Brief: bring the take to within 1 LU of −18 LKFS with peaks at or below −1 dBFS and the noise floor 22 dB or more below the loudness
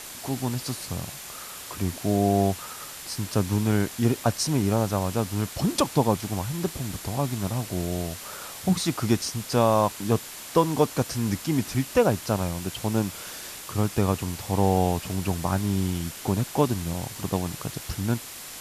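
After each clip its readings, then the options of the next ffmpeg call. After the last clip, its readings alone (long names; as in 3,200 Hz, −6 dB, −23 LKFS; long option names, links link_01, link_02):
interfering tone 7,200 Hz; level of the tone −51 dBFS; background noise floor −40 dBFS; target noise floor −49 dBFS; integrated loudness −26.5 LKFS; sample peak −8.0 dBFS; target loudness −18.0 LKFS
→ -af "bandreject=frequency=7200:width=30"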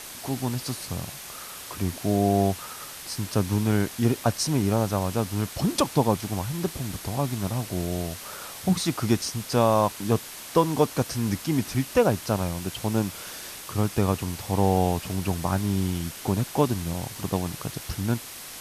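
interfering tone none found; background noise floor −40 dBFS; target noise floor −49 dBFS
→ -af "afftdn=noise_reduction=9:noise_floor=-40"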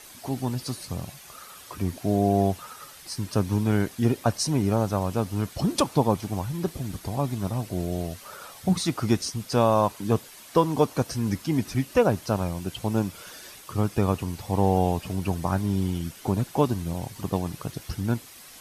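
background noise floor −47 dBFS; target noise floor −49 dBFS
→ -af "afftdn=noise_reduction=6:noise_floor=-47"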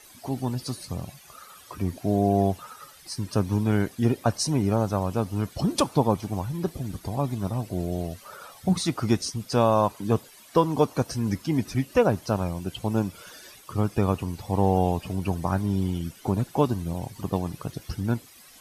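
background noise floor −51 dBFS; integrated loudness −26.5 LKFS; sample peak −8.5 dBFS; target loudness −18.0 LKFS
→ -af "volume=8.5dB,alimiter=limit=-1dB:level=0:latency=1"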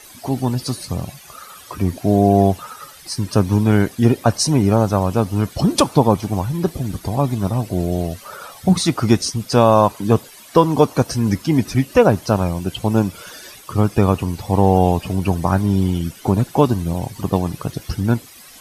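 integrated loudness −18.5 LKFS; sample peak −1.0 dBFS; background noise floor −42 dBFS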